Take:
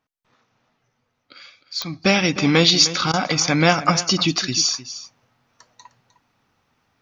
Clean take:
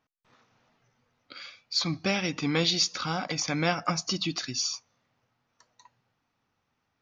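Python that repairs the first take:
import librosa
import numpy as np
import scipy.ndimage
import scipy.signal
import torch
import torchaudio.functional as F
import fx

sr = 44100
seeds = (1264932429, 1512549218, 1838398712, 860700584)

y = fx.fix_declick_ar(x, sr, threshold=10.0)
y = fx.fix_interpolate(y, sr, at_s=(3.12,), length_ms=14.0)
y = fx.fix_echo_inverse(y, sr, delay_ms=306, level_db=-14.5)
y = fx.fix_level(y, sr, at_s=2.05, step_db=-10.5)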